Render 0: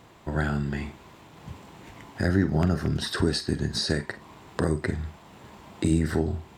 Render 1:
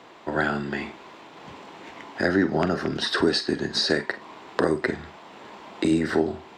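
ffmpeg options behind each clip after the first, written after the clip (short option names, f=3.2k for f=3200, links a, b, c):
-filter_complex "[0:a]acrossover=split=240 6100:gain=0.0891 1 0.126[a][b][c];[a][b][c]amix=inputs=3:normalize=0,volume=6.5dB"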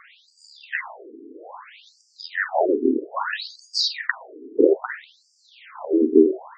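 -af "bass=f=250:g=8,treble=f=4k:g=-7,afftfilt=real='re*between(b*sr/1024,310*pow(6600/310,0.5+0.5*sin(2*PI*0.61*pts/sr))/1.41,310*pow(6600/310,0.5+0.5*sin(2*PI*0.61*pts/sr))*1.41)':imag='im*between(b*sr/1024,310*pow(6600/310,0.5+0.5*sin(2*PI*0.61*pts/sr))/1.41,310*pow(6600/310,0.5+0.5*sin(2*PI*0.61*pts/sr))*1.41)':win_size=1024:overlap=0.75,volume=8dB"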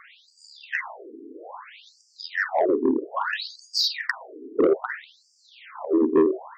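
-af "asoftclip=type=tanh:threshold=-11.5dB"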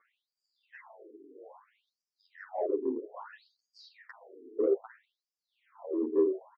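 -filter_complex "[0:a]bandpass=f=460:t=q:w=1.9:csg=0,asplit=2[a][b];[b]adelay=8.9,afreqshift=-2[c];[a][c]amix=inputs=2:normalize=1,volume=-4dB"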